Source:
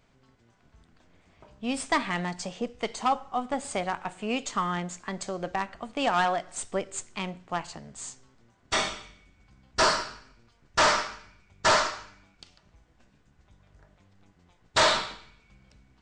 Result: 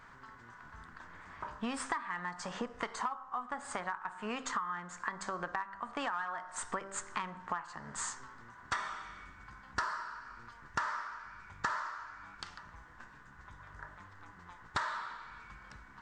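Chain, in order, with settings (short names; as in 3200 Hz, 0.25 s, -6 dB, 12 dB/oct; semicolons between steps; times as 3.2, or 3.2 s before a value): band shelf 1300 Hz +15.5 dB 1.3 oct; de-hum 65.07 Hz, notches 26; compressor 16:1, threshold -37 dBFS, peak gain reduction 32 dB; gain +3 dB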